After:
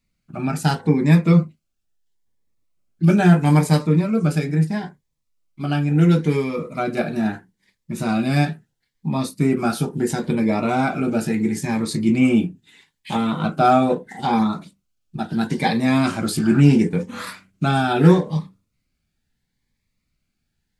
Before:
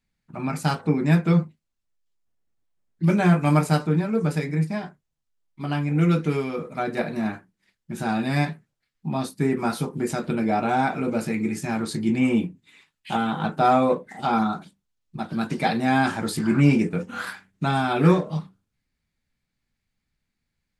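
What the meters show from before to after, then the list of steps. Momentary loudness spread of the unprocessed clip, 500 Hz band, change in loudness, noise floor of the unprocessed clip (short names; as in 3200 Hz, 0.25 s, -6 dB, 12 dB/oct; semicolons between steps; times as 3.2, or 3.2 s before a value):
13 LU, +3.0 dB, +4.0 dB, -80 dBFS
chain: cascading phaser rising 0.75 Hz; gain +5 dB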